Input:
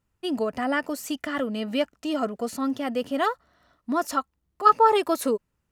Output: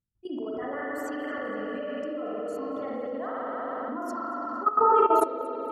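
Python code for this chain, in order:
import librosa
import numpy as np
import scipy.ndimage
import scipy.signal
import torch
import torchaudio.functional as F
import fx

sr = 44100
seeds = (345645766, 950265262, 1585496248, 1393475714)

y = fx.envelope_sharpen(x, sr, power=2.0)
y = fx.peak_eq(y, sr, hz=3600.0, db=-11.0, octaves=0.87)
y = fx.rev_spring(y, sr, rt60_s=3.5, pass_ms=(40, 57), chirp_ms=25, drr_db=-7.5)
y = fx.level_steps(y, sr, step_db=14)
y = fx.echo_feedback(y, sr, ms=232, feedback_pct=45, wet_db=-22.5)
y = y * 10.0 ** (-5.0 / 20.0)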